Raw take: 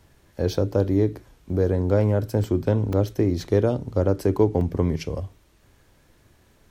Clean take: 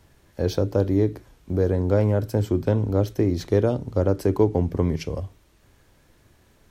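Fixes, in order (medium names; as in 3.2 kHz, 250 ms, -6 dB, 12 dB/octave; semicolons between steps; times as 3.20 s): interpolate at 2.44/2.93/4.61 s, 2.3 ms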